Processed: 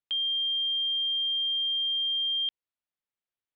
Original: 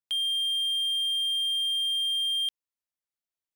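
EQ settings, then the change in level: inverse Chebyshev low-pass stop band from 9 kHz, stop band 50 dB; 0.0 dB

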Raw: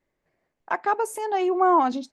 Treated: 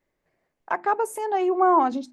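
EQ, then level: hum notches 50/100/150/200/250/300/350 Hz; dynamic bell 4.3 kHz, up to -7 dB, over -44 dBFS, Q 0.73; +1.0 dB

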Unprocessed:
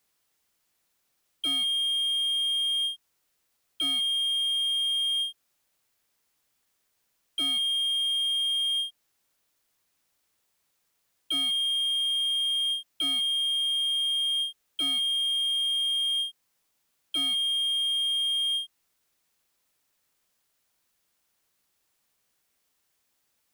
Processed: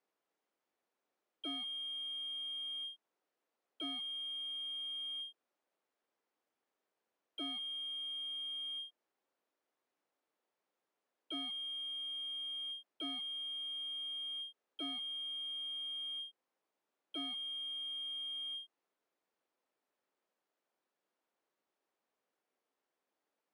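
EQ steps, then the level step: high-pass 270 Hz 12 dB/octave; band-pass filter 400 Hz, Q 0.63; -1.0 dB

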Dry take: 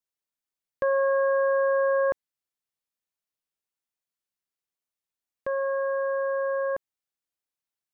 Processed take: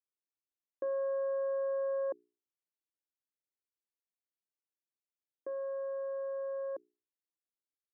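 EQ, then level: ladder band-pass 360 Hz, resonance 60%; bass shelf 260 Hz -9 dB; hum notches 60/120/180/240/300/360/420 Hz; +4.0 dB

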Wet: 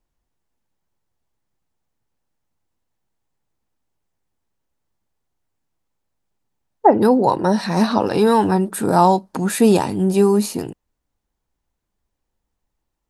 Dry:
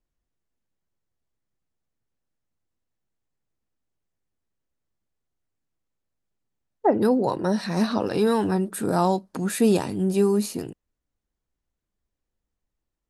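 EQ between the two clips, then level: peaking EQ 880 Hz +6.5 dB 0.49 oct; +5.5 dB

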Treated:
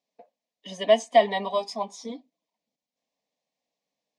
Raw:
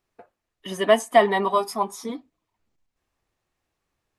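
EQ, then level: dynamic bell 2.6 kHz, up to +5 dB, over -37 dBFS, Q 0.95; cabinet simulation 260–6500 Hz, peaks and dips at 860 Hz -5 dB, 1.6 kHz -5 dB, 2.7 kHz -4 dB; static phaser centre 360 Hz, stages 6; 0.0 dB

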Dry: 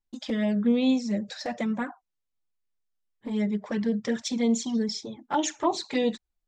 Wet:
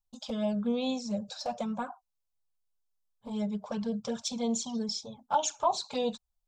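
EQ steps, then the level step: dynamic bell 1.8 kHz, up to +3 dB, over -43 dBFS, Q 0.92; static phaser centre 790 Hz, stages 4; 0.0 dB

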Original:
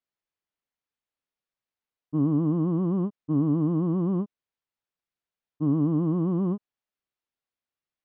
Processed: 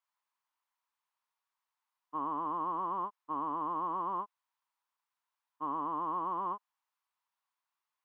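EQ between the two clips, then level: resonant high-pass 980 Hz, resonance Q 4.9; 0.0 dB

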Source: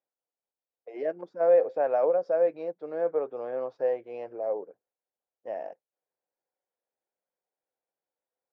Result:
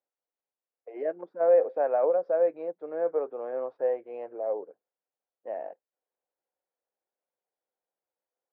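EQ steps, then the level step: band-pass 230–2000 Hz; 0.0 dB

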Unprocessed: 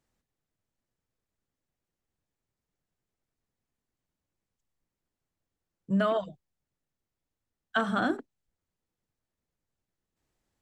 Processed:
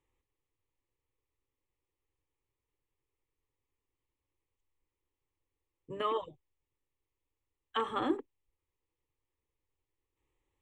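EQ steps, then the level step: distance through air 52 m; static phaser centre 1 kHz, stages 8; +1.5 dB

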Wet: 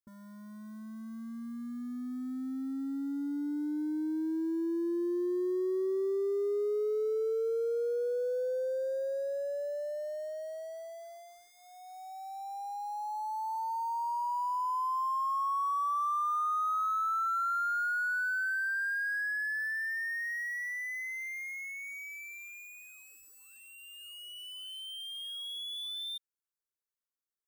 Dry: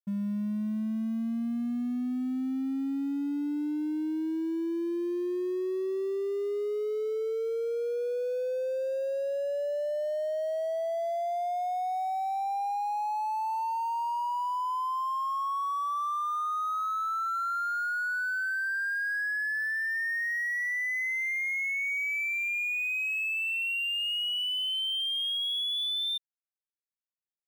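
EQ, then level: static phaser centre 710 Hz, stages 6; 0.0 dB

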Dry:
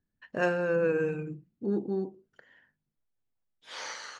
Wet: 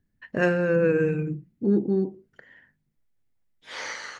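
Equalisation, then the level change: dynamic bell 820 Hz, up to -5 dB, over -44 dBFS, Q 1.9; bass shelf 410 Hz +9 dB; peaking EQ 2 kHz +7 dB 0.49 oct; +2.0 dB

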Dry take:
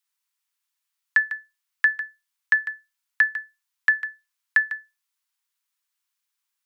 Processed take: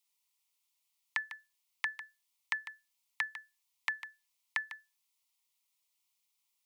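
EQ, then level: Butterworth band-stop 1.6 kHz, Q 2.1; peaking EQ 1.2 kHz -6.5 dB 0.21 oct; +1.0 dB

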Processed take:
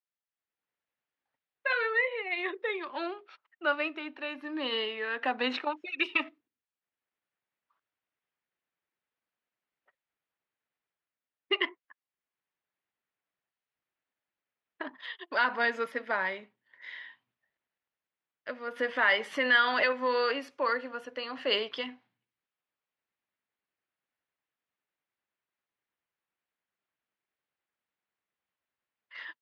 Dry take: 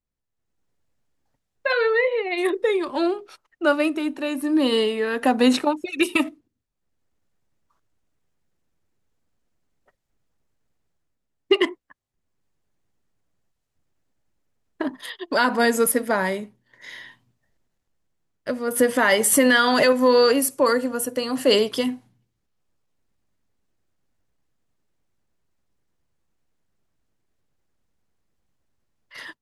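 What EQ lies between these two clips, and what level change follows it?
band-pass filter 2.6 kHz, Q 0.79; distance through air 280 m; 0.0 dB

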